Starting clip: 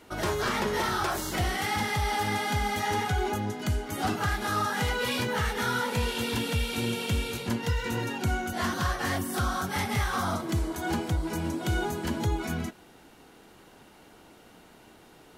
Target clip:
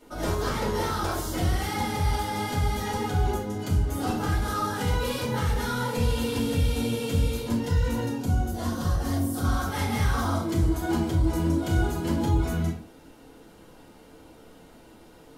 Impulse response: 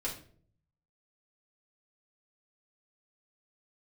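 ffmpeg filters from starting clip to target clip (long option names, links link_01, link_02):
-filter_complex "[0:a]asetnsamples=nb_out_samples=441:pad=0,asendcmd='8.09 equalizer g -15;9.44 equalizer g -4.5',equalizer=frequency=2000:width_type=o:width=1.9:gain=-7.5[link_01];[1:a]atrim=start_sample=2205,afade=type=out:start_time=0.26:duration=0.01,atrim=end_sample=11907[link_02];[link_01][link_02]afir=irnorm=-1:irlink=0"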